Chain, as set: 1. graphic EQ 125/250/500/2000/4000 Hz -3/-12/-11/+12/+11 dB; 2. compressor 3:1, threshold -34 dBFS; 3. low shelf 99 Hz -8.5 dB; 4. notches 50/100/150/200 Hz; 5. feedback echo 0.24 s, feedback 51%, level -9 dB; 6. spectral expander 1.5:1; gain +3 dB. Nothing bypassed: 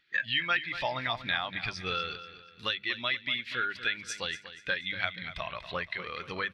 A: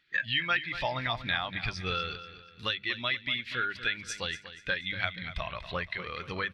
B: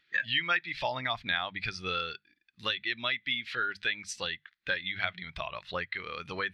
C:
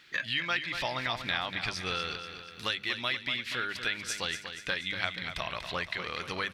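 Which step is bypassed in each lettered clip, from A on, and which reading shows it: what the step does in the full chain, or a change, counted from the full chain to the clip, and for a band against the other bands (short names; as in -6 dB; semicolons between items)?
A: 3, 125 Hz band +5.0 dB; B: 5, momentary loudness spread change +1 LU; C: 6, 8 kHz band +4.5 dB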